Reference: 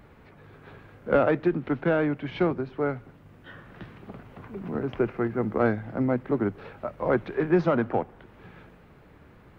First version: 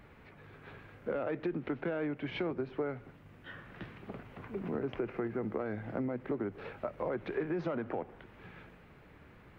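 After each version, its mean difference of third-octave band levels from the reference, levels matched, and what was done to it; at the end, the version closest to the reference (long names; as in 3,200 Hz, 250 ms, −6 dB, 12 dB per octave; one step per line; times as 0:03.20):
4.5 dB: brickwall limiter −19.5 dBFS, peak gain reduction 10.5 dB
parametric band 2,300 Hz +5 dB 1.2 octaves
downward compressor 4 to 1, threshold −31 dBFS, peak gain reduction 7 dB
dynamic equaliser 430 Hz, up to +5 dB, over −46 dBFS, Q 0.9
level −4.5 dB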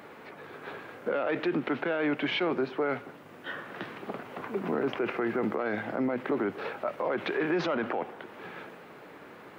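8.0 dB: high-pass filter 320 Hz 12 dB per octave
dynamic equaliser 2,900 Hz, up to +7 dB, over −46 dBFS, Q 0.99
in parallel at −1.5 dB: compressor whose output falls as the input rises −34 dBFS, ratio −1
on the sum: brickwall limiter −20.5 dBFS, peak gain reduction 11.5 dB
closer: first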